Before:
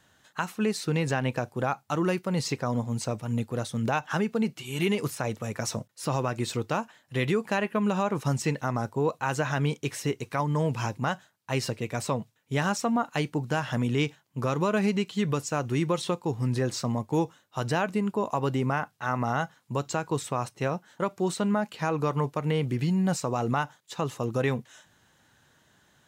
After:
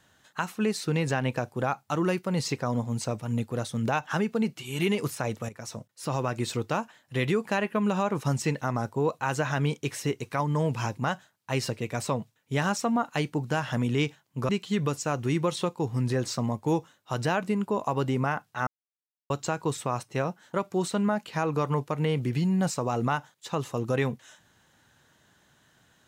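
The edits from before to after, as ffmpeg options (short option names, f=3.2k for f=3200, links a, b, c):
-filter_complex "[0:a]asplit=5[a][b][c][d][e];[a]atrim=end=5.49,asetpts=PTS-STARTPTS,afade=t=out:st=5.486:d=0.004:c=hsin:silence=0.223872[f];[b]atrim=start=5.49:end=14.492,asetpts=PTS-STARTPTS,afade=t=in:d=0.81:silence=0.223872[g];[c]atrim=start=14.948:end=19.13,asetpts=PTS-STARTPTS,afade=t=out:st=4.178:d=0.004:c=hsin[h];[d]atrim=start=19.13:end=19.76,asetpts=PTS-STARTPTS,volume=0[i];[e]atrim=start=19.76,asetpts=PTS-STARTPTS,afade=t=in:d=0.004:c=hsin[j];[f][g]concat=n=2:v=0:a=1[k];[h][i][j]concat=n=3:v=0:a=1[l];[k][l]acrossfade=d=0.004:c1=hsin:c2=hsin"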